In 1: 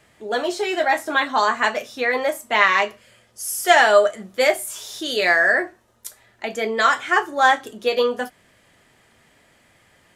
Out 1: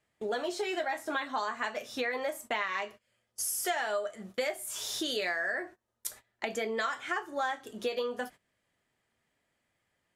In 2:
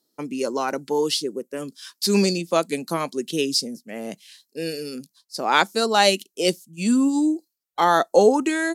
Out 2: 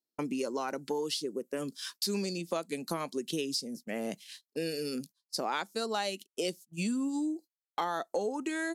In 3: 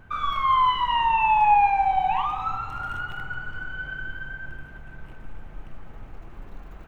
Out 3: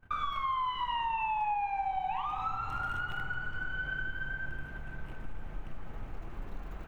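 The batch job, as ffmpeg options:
-af "acompressor=threshold=-31dB:ratio=6,agate=range=-22dB:threshold=-47dB:ratio=16:detection=peak"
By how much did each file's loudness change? -14.5, -13.0, -11.5 LU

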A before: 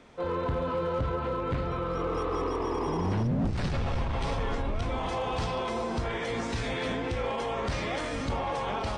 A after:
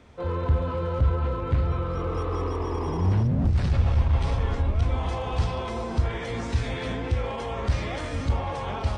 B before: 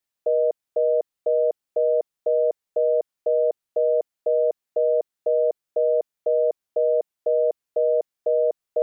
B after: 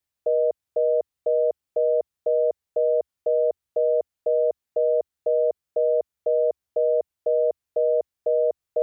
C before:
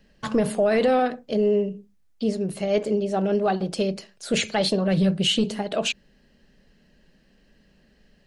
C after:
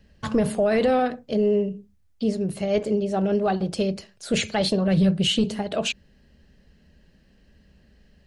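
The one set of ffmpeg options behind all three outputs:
-af "equalizer=f=75:w=1.2:g=15,volume=-1dB"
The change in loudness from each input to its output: +4.0, -0.5, 0.0 LU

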